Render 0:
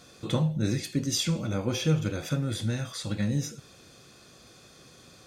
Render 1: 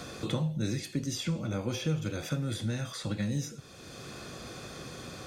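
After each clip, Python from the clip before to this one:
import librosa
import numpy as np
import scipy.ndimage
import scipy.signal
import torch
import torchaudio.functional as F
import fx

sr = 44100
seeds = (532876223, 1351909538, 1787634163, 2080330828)

y = fx.band_squash(x, sr, depth_pct=70)
y = y * librosa.db_to_amplitude(-4.0)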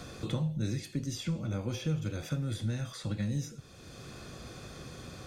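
y = fx.low_shelf(x, sr, hz=110.0, db=10.5)
y = y * librosa.db_to_amplitude(-4.5)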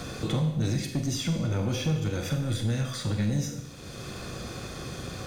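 y = fx.leveller(x, sr, passes=2)
y = fx.rev_schroeder(y, sr, rt60_s=0.88, comb_ms=31, drr_db=6.0)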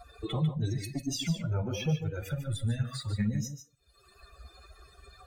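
y = fx.bin_expand(x, sr, power=3.0)
y = y + 10.0 ** (-9.0 / 20.0) * np.pad(y, (int(147 * sr / 1000.0), 0))[:len(y)]
y = y * librosa.db_to_amplitude(2.5)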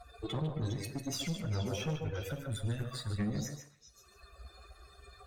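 y = fx.tube_stage(x, sr, drive_db=30.0, bias=0.55)
y = fx.echo_stepped(y, sr, ms=135, hz=550.0, octaves=1.4, feedback_pct=70, wet_db=-2.5)
y = fx.rev_double_slope(y, sr, seeds[0], early_s=0.58, late_s=2.1, knee_db=-26, drr_db=12.5)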